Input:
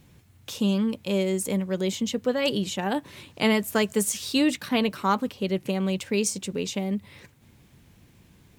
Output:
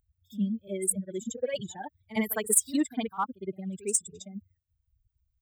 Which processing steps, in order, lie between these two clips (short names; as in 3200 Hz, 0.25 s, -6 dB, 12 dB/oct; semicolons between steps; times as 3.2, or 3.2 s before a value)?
per-bin expansion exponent 3; resonant high shelf 6600 Hz +9.5 dB, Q 3; notch 2700 Hz, Q 6.2; in parallel at -8 dB: hard clip -20 dBFS, distortion -8 dB; on the sum: time stretch by phase-locked vocoder 0.63×; on a send: reverse echo 58 ms -17 dB; on the sum: gain -3.5 dB